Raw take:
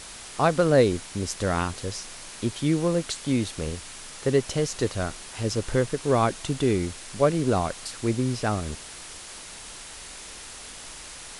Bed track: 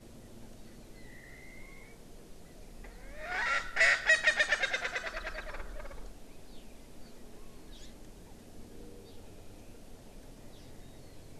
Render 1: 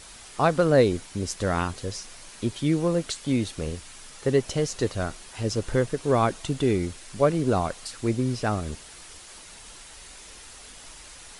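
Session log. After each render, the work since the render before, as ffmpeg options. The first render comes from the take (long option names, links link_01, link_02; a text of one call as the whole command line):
ffmpeg -i in.wav -af "afftdn=noise_reduction=6:noise_floor=-42" out.wav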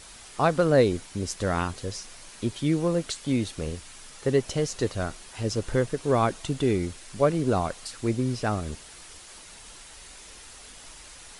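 ffmpeg -i in.wav -af "volume=-1dB" out.wav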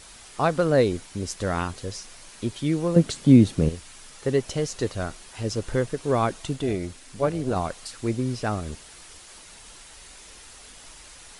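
ffmpeg -i in.wav -filter_complex "[0:a]asettb=1/sr,asplit=3[link_01][link_02][link_03];[link_01]atrim=end=2.964[link_04];[link_02]atrim=start=2.96:end=3.69,asetpts=PTS-STARTPTS,afade=type=in:duration=0.004:curve=qsin,afade=type=out:start_time=0.726:duration=0.004:curve=qsin,equalizer=frequency=170:width_type=o:width=2.9:gain=14[link_05];[link_03]atrim=start=3.686[link_06];[link_04][link_05]acrossfade=duration=0.004:curve1=hsin:curve2=qsin[link_07];[link_07][link_06]acrossfade=duration=0.004:curve1=qsin:curve2=hsin,asettb=1/sr,asplit=3[link_08][link_09][link_10];[link_08]atrim=end=6.564[link_11];[link_09]atrim=start=6.56:end=7.56,asetpts=PTS-STARTPTS,afade=type=in:duration=0.004:curve=qsin,afade=type=out:start_time=0.996:duration=0.004:curve=qsin,tremolo=f=270:d=0.462[link_12];[link_10]atrim=start=7.556[link_13];[link_11][link_12]acrossfade=duration=0.004:curve1=hsin:curve2=qsin[link_14];[link_14][link_13]acrossfade=duration=0.004:curve1=qsin:curve2=hsin" out.wav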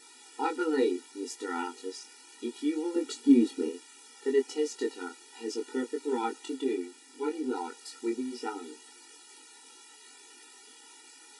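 ffmpeg -i in.wav -af "flanger=delay=19.5:depth=3.1:speed=0.68,afftfilt=real='re*eq(mod(floor(b*sr/1024/250),2),1)':imag='im*eq(mod(floor(b*sr/1024/250),2),1)':win_size=1024:overlap=0.75" out.wav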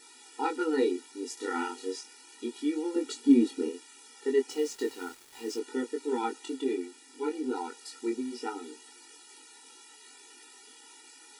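ffmpeg -i in.wav -filter_complex "[0:a]asettb=1/sr,asplit=3[link_01][link_02][link_03];[link_01]atrim=end=1.344[link_04];[link_02]atrim=start=1.34:end=2.01,asetpts=PTS-STARTPTS,afade=type=in:duration=0.004:curve=qsin,afade=type=out:start_time=0.666:duration=0.004:curve=qsin,asplit=2[link_05][link_06];[link_06]adelay=32,volume=-2dB[link_07];[link_05][link_07]amix=inputs=2:normalize=0,atrim=end_sample=29547[link_08];[link_03]atrim=start=2.006[link_09];[link_04][link_08]acrossfade=duration=0.004:curve1=hsin:curve2=qsin[link_10];[link_10][link_09]acrossfade=duration=0.004:curve1=qsin:curve2=hsin,asettb=1/sr,asplit=3[link_11][link_12][link_13];[link_11]atrim=end=4.504[link_14];[link_12]atrim=start=4.5:end=5.59,asetpts=PTS-STARTPTS,afade=type=in:duration=0.004:curve=qsin,afade=type=out:start_time=1.086:duration=0.004:curve=qsin,acrusher=bits=7:mix=0:aa=0.5[link_15];[link_13]atrim=start=5.586[link_16];[link_14][link_15]acrossfade=duration=0.004:curve1=hsin:curve2=qsin[link_17];[link_17][link_16]acrossfade=duration=0.004:curve1=qsin:curve2=hsin" out.wav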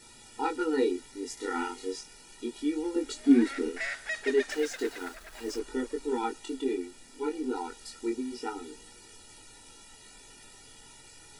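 ffmpeg -i in.wav -i bed.wav -filter_complex "[1:a]volume=-9.5dB[link_01];[0:a][link_01]amix=inputs=2:normalize=0" out.wav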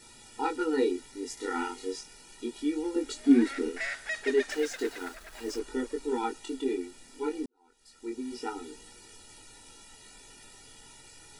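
ffmpeg -i in.wav -filter_complex "[0:a]asplit=2[link_01][link_02];[link_01]atrim=end=7.46,asetpts=PTS-STARTPTS,afade=type=out:start_time=7.456:duration=0.004:curve=hsin[link_03];[link_02]atrim=start=7.46,asetpts=PTS-STARTPTS,afade=type=in:duration=0.87:curve=qua[link_04];[link_03][link_04]concat=n=2:v=0:a=1" out.wav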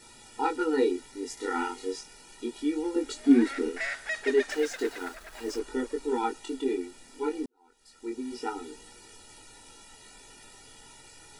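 ffmpeg -i in.wav -af "equalizer=frequency=830:width_type=o:width=2.4:gain=3" out.wav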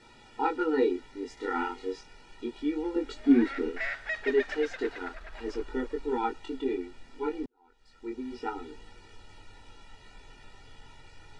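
ffmpeg -i in.wav -af "lowpass=3300,asubboost=boost=2.5:cutoff=140" out.wav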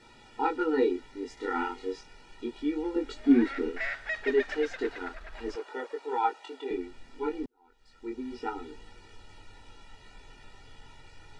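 ffmpeg -i in.wav -filter_complex "[0:a]asettb=1/sr,asplit=3[link_01][link_02][link_03];[link_01]atrim=end=5.554[link_04];[link_02]atrim=start=5.55:end=6.71,asetpts=PTS-STARTPTS,afade=type=in:duration=0.004:curve=qsin,afade=type=out:start_time=1.156:duration=0.004:curve=qsin,highpass=frequency=630:width_type=q:width=1.8[link_05];[link_03]atrim=start=6.706[link_06];[link_04][link_05]acrossfade=duration=0.004:curve1=hsin:curve2=qsin[link_07];[link_07][link_06]acrossfade=duration=0.004:curve1=qsin:curve2=hsin" out.wav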